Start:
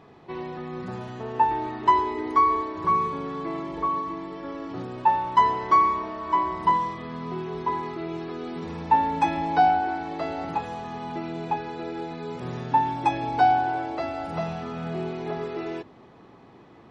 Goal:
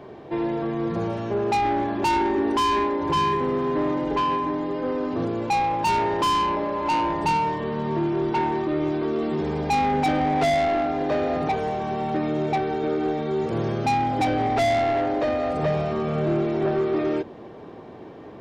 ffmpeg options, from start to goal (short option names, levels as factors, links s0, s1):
-filter_complex "[0:a]asetrate=40517,aresample=44100,equalizer=f=460:t=o:w=1:g=9,acrossover=split=250[s0][s1];[s1]asoftclip=type=tanh:threshold=0.0531[s2];[s0][s2]amix=inputs=2:normalize=0,volume=1.88"